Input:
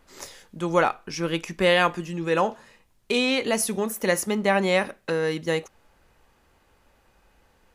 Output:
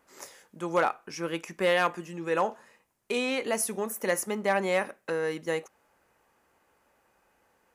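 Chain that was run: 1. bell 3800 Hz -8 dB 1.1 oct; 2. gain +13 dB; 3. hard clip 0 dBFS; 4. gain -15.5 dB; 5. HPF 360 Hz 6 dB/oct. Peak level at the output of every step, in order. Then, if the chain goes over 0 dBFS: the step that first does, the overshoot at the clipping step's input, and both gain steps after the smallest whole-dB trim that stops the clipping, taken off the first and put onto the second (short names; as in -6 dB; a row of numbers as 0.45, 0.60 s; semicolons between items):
-8.0, +5.0, 0.0, -15.5, -12.0 dBFS; step 2, 5.0 dB; step 2 +8 dB, step 4 -10.5 dB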